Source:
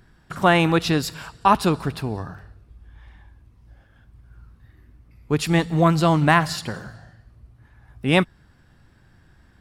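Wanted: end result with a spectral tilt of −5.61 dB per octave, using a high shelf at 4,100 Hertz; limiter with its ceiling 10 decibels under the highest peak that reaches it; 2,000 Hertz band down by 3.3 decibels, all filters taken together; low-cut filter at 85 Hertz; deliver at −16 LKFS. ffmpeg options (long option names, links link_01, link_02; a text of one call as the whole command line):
ffmpeg -i in.wav -af "highpass=85,equalizer=frequency=2000:width_type=o:gain=-3.5,highshelf=frequency=4100:gain=-3.5,volume=9.5dB,alimiter=limit=-4dB:level=0:latency=1" out.wav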